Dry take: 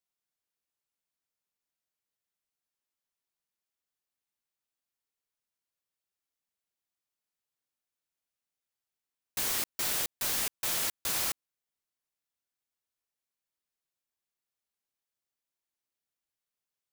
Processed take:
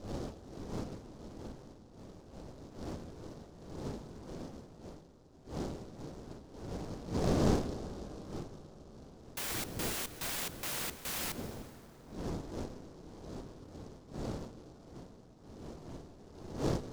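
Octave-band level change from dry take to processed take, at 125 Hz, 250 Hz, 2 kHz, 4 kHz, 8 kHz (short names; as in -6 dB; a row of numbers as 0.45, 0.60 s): +18.5, +17.0, -3.0, -5.0, -7.0 dB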